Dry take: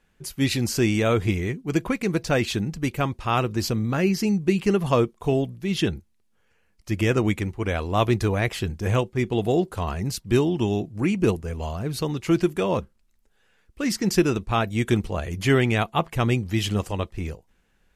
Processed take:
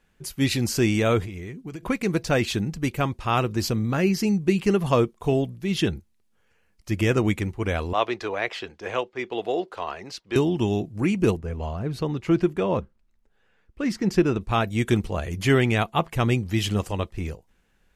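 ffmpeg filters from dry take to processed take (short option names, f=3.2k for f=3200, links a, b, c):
-filter_complex "[0:a]asettb=1/sr,asplit=3[a][b][c];[a]atrim=end=1.244[d];[b]atrim=start=1.24:end=1.83,asetpts=PTS-STARTPTS,afade=t=in:d=0.004:c=qsin,afade=t=out:st=0.586:d=0.004:c=qsin,acompressor=threshold=-31dB:ratio=16:attack=3.2:release=140:knee=1:detection=peak[e];[c]atrim=start=1.826[f];[d][e]acrossfade=d=0.004:c1=hsin:c2=qsin[g];[g][f]acrossfade=d=0.004:c1=qsin:c2=hsin,asettb=1/sr,asplit=3[h][i][j];[h]atrim=end=7.934[k];[i]atrim=start=7.93:end=10.36,asetpts=PTS-STARTPTS,afade=t=in:d=0.004:c=qsin,afade=t=out:st=2.426:d=0.004:c=qsin,acrossover=split=360 5500:gain=0.0708 1 0.0708[l][m][n];[l][m][n]amix=inputs=3:normalize=0[o];[j]atrim=start=10.356[p];[k][o]acrossfade=d=0.004:c1=hsin:c2=qsin[q];[q][p]acrossfade=d=0.004:c1=qsin:c2=hsin,asettb=1/sr,asplit=3[r][s][t];[r]atrim=end=11.364[u];[s]atrim=start=11.36:end=14.41,asetpts=PTS-STARTPTS,afade=t=in:d=0.004:c=qsin,afade=t=out:st=3.046:d=0.004:c=qsin,lowpass=f=2.1k:p=1[v];[t]atrim=start=14.406[w];[u][v]acrossfade=d=0.004:c1=hsin:c2=qsin[x];[x][w]acrossfade=d=0.004:c1=qsin:c2=hsin"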